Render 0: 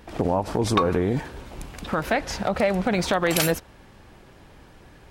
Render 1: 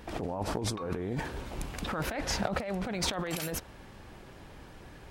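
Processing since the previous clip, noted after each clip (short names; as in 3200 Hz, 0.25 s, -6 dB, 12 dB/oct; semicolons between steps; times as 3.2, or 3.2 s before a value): negative-ratio compressor -28 dBFS, ratio -1; gain -5 dB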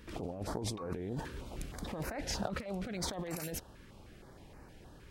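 stepped notch 6.4 Hz 750–3300 Hz; gain -4.5 dB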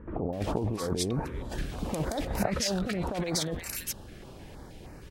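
bands offset in time lows, highs 0.33 s, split 1400 Hz; gain +8.5 dB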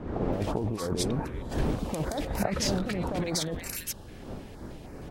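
wind noise 350 Hz -37 dBFS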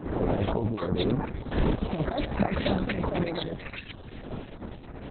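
gain +3.5 dB; Opus 6 kbps 48000 Hz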